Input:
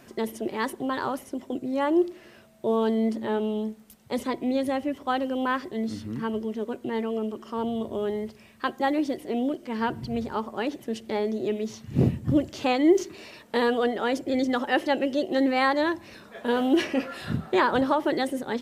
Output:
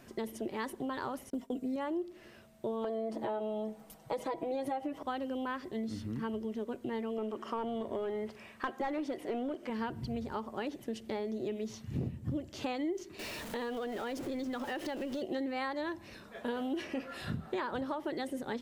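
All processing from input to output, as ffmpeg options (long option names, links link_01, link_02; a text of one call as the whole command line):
ffmpeg -i in.wav -filter_complex "[0:a]asettb=1/sr,asplit=3[link_01][link_02][link_03];[link_01]atrim=end=1.304[link_04];[link_02]atrim=start=1.3:end=1.76,asetpts=PTS-STARTPTS,afade=type=in:duration=0.004:curve=qsin,afade=type=out:start_time=0.456:duration=0.004:curve=qsin,agate=range=-33dB:threshold=-41dB:ratio=3:release=100:detection=peak,highshelf=frequency=9500:gain=6,aecho=1:1:4.3:0.8,atrim=end_sample=20286[link_05];[link_03]atrim=start=1.756[link_06];[link_04][link_05]acrossfade=duration=0.004:curve1=hsin:curve2=qsin[link_07];[link_07][link_06]acrossfade=duration=0.004:curve1=qsin:curve2=hsin,asettb=1/sr,asplit=3[link_08][link_09][link_10];[link_08]atrim=end=2.844[link_11];[link_09]atrim=start=2.84:end=5.03,asetpts=PTS-STARTPTS,afade=type=in:duration=0.004:curve=qsin,afade=type=out:start_time=2.186:duration=0.004:curve=qsin,equalizer=frequency=730:width=0.93:gain=12.5,acompressor=threshold=-22dB:ratio=2:attack=3.2:release=140:knee=1:detection=peak,aecho=1:1:6.2:0.85,atrim=end_sample=96579[link_12];[link_10]atrim=start=5.026[link_13];[link_11][link_12]acrossfade=duration=0.004:curve1=hsin:curve2=qsin[link_14];[link_14][link_13]acrossfade=duration=0.004:curve1=qsin:curve2=hsin,asettb=1/sr,asplit=3[link_15][link_16][link_17];[link_15]atrim=end=7.184[link_18];[link_16]atrim=start=7.18:end=9.7,asetpts=PTS-STARTPTS,afade=type=in:duration=0.004:curve=qsin,afade=type=out:start_time=2.516:duration=0.004:curve=qsin,asplit=2[link_19][link_20];[link_20]highpass=frequency=720:poles=1,volume=16dB,asoftclip=type=tanh:threshold=-12dB[link_21];[link_19][link_21]amix=inputs=2:normalize=0,lowpass=frequency=2900:poles=1,volume=-6dB,equalizer=frequency=4200:width=1.1:gain=-4[link_22];[link_17]atrim=start=9.696[link_23];[link_18][link_22]acrossfade=duration=0.004:curve1=hsin:curve2=qsin[link_24];[link_24][link_23]acrossfade=duration=0.004:curve1=qsin:curve2=hsin,asettb=1/sr,asplit=3[link_25][link_26][link_27];[link_25]atrim=end=13.194[link_28];[link_26]atrim=start=13.19:end=15.22,asetpts=PTS-STARTPTS,afade=type=in:duration=0.004:curve=qsin,afade=type=out:start_time=2.026:duration=0.004:curve=qsin,aeval=exprs='val(0)+0.5*0.0188*sgn(val(0))':channel_layout=same,acompressor=threshold=-30dB:ratio=3:attack=3.2:release=140:knee=1:detection=peak[link_29];[link_27]atrim=start=15.216[link_30];[link_28][link_29]acrossfade=duration=0.004:curve1=hsin:curve2=qsin[link_31];[link_31][link_30]acrossfade=duration=0.004:curve1=qsin:curve2=hsin,lowshelf=frequency=84:gain=8,acompressor=threshold=-28dB:ratio=6,volume=-5dB" out.wav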